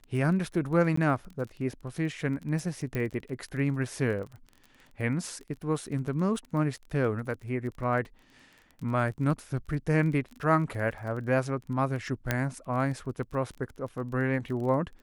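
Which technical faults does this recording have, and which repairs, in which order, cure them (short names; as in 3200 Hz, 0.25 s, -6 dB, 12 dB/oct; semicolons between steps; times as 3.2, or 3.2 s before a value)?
crackle 22/s -37 dBFS
0.96–0.97 gap 14 ms
2.95 pop -19 dBFS
12.31 pop -11 dBFS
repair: de-click; interpolate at 0.96, 14 ms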